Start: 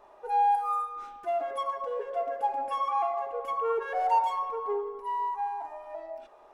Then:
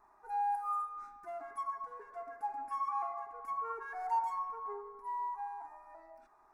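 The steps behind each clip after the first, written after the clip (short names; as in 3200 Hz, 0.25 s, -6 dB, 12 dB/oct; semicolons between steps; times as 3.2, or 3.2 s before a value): fixed phaser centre 1300 Hz, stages 4; gain -5.5 dB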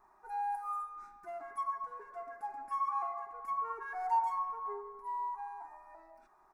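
comb 5.4 ms, depth 33%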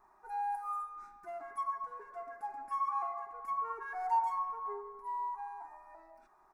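nothing audible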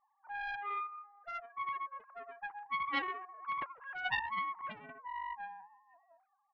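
sine-wave speech; Doppler distortion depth 0.72 ms; gain -1.5 dB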